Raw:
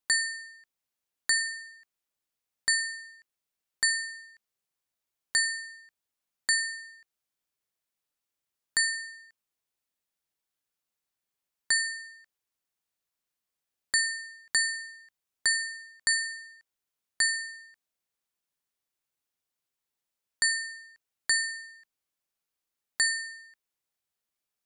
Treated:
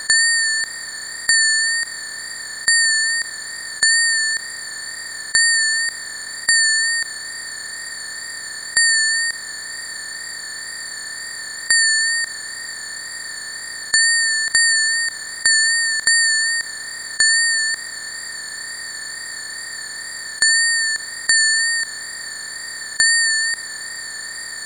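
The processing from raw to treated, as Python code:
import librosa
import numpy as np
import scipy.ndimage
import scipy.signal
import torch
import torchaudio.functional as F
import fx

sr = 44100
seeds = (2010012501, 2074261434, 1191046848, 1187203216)

y = fx.bin_compress(x, sr, power=0.2)
y = fx.wow_flutter(y, sr, seeds[0], rate_hz=2.1, depth_cents=32.0)
y = F.gain(torch.from_numpy(y), 8.5).numpy()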